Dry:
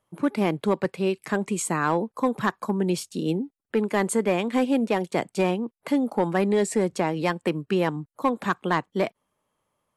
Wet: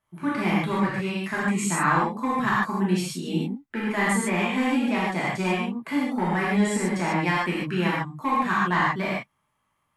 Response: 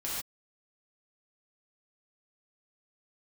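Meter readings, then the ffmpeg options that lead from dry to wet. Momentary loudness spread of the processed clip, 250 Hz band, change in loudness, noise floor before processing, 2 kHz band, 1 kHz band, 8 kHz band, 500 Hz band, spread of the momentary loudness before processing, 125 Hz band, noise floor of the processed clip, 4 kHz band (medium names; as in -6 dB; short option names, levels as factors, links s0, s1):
6 LU, +0.5 dB, +1.0 dB, -81 dBFS, +6.0 dB, +3.0 dB, +0.5 dB, -5.5 dB, 5 LU, +2.5 dB, -74 dBFS, +2.5 dB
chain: -filter_complex "[0:a]equalizer=f=125:t=o:w=1:g=7,equalizer=f=500:t=o:w=1:g=-8,equalizer=f=1000:t=o:w=1:g=4,equalizer=f=2000:t=o:w=1:g=7[s0];[1:a]atrim=start_sample=2205[s1];[s0][s1]afir=irnorm=-1:irlink=0,volume=0.631"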